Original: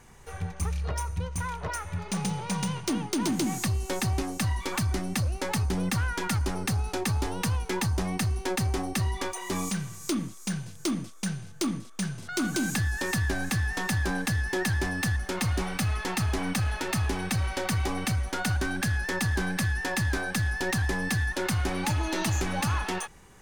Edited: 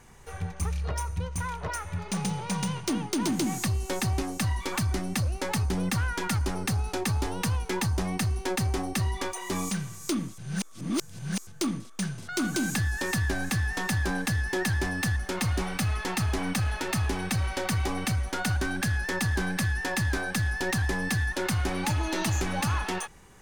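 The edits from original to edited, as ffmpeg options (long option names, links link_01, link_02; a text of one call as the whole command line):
ffmpeg -i in.wav -filter_complex "[0:a]asplit=3[link_01][link_02][link_03];[link_01]atrim=end=10.382[link_04];[link_02]atrim=start=10.378:end=11.472,asetpts=PTS-STARTPTS,areverse[link_05];[link_03]atrim=start=11.468[link_06];[link_04][link_05]acrossfade=duration=0.004:curve1=hsin:curve2=hsin[link_07];[link_07][link_06]acrossfade=duration=0.004:curve1=hsin:curve2=hsin" out.wav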